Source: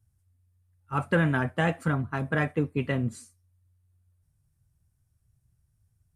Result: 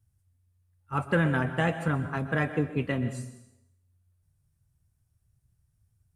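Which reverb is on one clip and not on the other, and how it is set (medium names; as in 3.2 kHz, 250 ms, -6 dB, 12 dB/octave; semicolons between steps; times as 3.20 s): plate-style reverb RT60 0.82 s, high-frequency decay 0.95×, pre-delay 110 ms, DRR 10.5 dB; trim -1 dB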